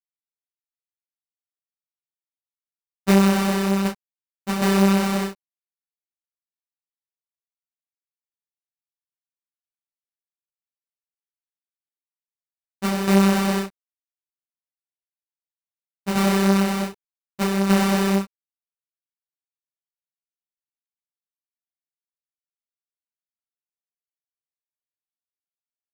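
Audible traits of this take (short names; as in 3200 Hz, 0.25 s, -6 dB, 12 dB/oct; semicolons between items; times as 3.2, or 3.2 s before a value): a quantiser's noise floor 8-bit, dither none; tremolo saw down 1.3 Hz, depth 60%; aliases and images of a low sample rate 3300 Hz, jitter 0%; a shimmering, thickened sound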